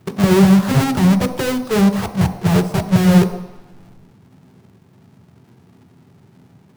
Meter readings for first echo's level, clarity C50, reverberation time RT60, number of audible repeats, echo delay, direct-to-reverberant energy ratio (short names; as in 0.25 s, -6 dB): none, 11.5 dB, 1.0 s, none, none, 7.0 dB